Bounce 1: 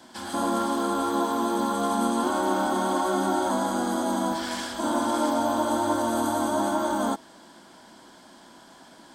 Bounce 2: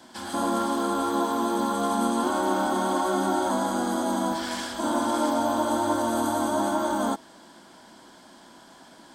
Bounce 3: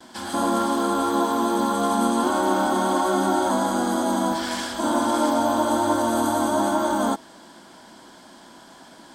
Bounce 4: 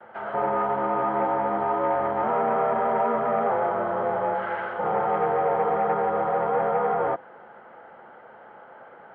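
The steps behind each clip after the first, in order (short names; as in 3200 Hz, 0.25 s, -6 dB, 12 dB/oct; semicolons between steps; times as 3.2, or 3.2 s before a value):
nothing audible
gate with hold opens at -46 dBFS; gain +3.5 dB
soft clip -18 dBFS, distortion -15 dB; mistuned SSB -140 Hz 480–2200 Hz; gain +3 dB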